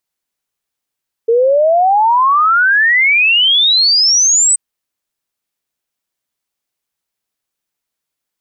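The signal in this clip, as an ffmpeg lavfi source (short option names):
-f lavfi -i "aevalsrc='0.422*clip(min(t,3.28-t)/0.01,0,1)*sin(2*PI*450*3.28/log(8200/450)*(exp(log(8200/450)*t/3.28)-1))':d=3.28:s=44100"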